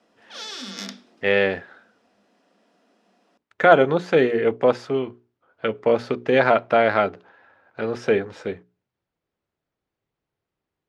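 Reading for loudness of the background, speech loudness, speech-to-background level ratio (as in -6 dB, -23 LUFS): -35.0 LUFS, -20.5 LUFS, 14.5 dB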